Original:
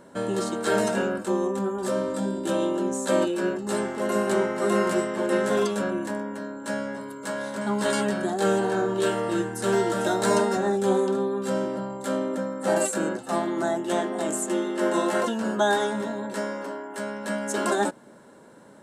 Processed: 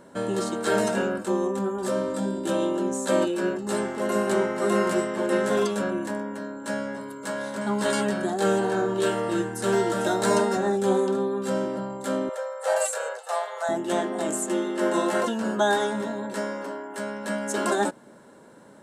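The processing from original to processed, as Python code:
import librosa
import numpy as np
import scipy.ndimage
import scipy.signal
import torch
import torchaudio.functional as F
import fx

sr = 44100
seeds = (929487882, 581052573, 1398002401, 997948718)

y = fx.brickwall_highpass(x, sr, low_hz=420.0, at=(12.29, 13.69))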